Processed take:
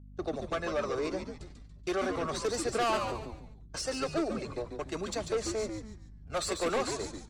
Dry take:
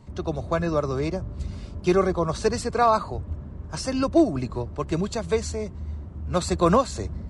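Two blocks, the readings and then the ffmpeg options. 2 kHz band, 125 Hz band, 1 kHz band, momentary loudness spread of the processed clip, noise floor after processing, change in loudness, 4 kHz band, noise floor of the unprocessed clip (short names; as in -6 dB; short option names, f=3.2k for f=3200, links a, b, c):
-3.0 dB, -15.5 dB, -9.5 dB, 13 LU, -51 dBFS, -8.5 dB, -2.0 dB, -38 dBFS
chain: -filter_complex "[0:a]highpass=92,agate=range=-40dB:threshold=-33dB:ratio=16:detection=peak,equalizer=f=170:w=1.2:g=-6.5,acrossover=split=290|1100|2200[a][b][c][d];[a]acompressor=threshold=-45dB:ratio=6[e];[e][b][c][d]amix=inputs=4:normalize=0,aeval=exprs='val(0)+0.00316*(sin(2*PI*50*n/s)+sin(2*PI*2*50*n/s)/2+sin(2*PI*3*50*n/s)/3+sin(2*PI*4*50*n/s)/4+sin(2*PI*5*50*n/s)/5)':c=same,aphaser=in_gain=1:out_gain=1:delay=2.4:decay=0.34:speed=0.36:type=sinusoidal,asoftclip=type=tanh:threshold=-23.5dB,asuperstop=centerf=990:order=4:qfactor=6.3,asplit=5[f][g][h][i][j];[g]adelay=142,afreqshift=-110,volume=-6.5dB[k];[h]adelay=284,afreqshift=-220,volume=-15.4dB[l];[i]adelay=426,afreqshift=-330,volume=-24.2dB[m];[j]adelay=568,afreqshift=-440,volume=-33.1dB[n];[f][k][l][m][n]amix=inputs=5:normalize=0,volume=-2.5dB"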